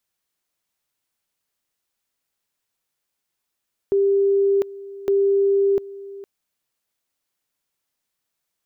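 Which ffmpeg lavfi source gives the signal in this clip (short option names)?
-f lavfi -i "aevalsrc='pow(10,(-14.5-18.5*gte(mod(t,1.16),0.7))/20)*sin(2*PI*396*t)':d=2.32:s=44100"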